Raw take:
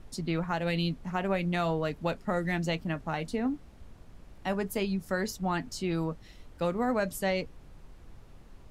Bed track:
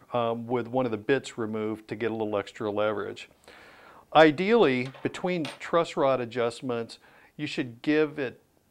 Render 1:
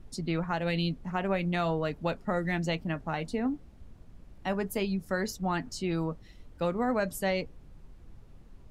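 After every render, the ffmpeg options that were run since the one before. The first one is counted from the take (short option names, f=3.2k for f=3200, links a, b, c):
-af "afftdn=nr=6:nf=-53"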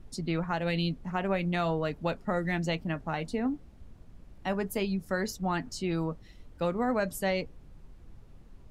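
-af anull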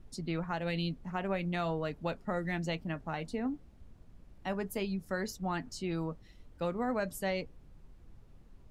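-af "volume=-4.5dB"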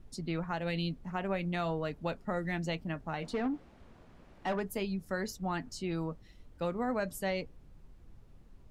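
-filter_complex "[0:a]asplit=3[a][b][c];[a]afade=t=out:st=3.22:d=0.02[d];[b]asplit=2[e][f];[f]highpass=f=720:p=1,volume=19dB,asoftclip=type=tanh:threshold=-24.5dB[g];[e][g]amix=inputs=2:normalize=0,lowpass=f=2k:p=1,volume=-6dB,afade=t=in:st=3.22:d=0.02,afade=t=out:st=4.59:d=0.02[h];[c]afade=t=in:st=4.59:d=0.02[i];[d][h][i]amix=inputs=3:normalize=0"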